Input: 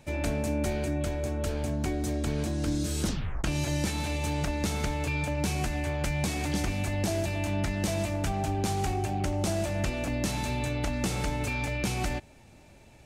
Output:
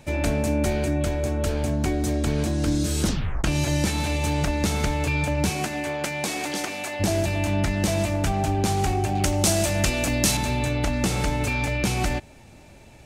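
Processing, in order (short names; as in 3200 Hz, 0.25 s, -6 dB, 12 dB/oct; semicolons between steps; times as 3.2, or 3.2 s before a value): 5.49–6.99 HPF 170 Hz -> 510 Hz 12 dB/oct; 9.15–10.37 high shelf 3100 Hz +10.5 dB; gain +6 dB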